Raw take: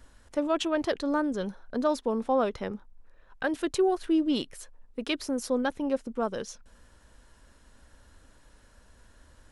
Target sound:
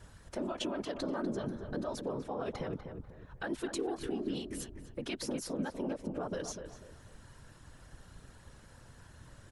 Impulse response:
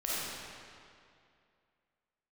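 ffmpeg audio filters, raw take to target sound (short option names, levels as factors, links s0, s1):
-filter_complex "[0:a]alimiter=level_in=1.19:limit=0.0631:level=0:latency=1:release=74,volume=0.841,acompressor=threshold=0.0141:ratio=3,afftfilt=real='hypot(re,im)*cos(2*PI*random(0))':imag='hypot(re,im)*sin(2*PI*random(1))':win_size=512:overlap=0.75,asplit=2[s0][s1];[s1]adelay=246,lowpass=f=1800:p=1,volume=0.447,asplit=2[s2][s3];[s3]adelay=246,lowpass=f=1800:p=1,volume=0.33,asplit=2[s4][s5];[s5]adelay=246,lowpass=f=1800:p=1,volume=0.33,asplit=2[s6][s7];[s7]adelay=246,lowpass=f=1800:p=1,volume=0.33[s8];[s0][s2][s4][s6][s8]amix=inputs=5:normalize=0,volume=2.37"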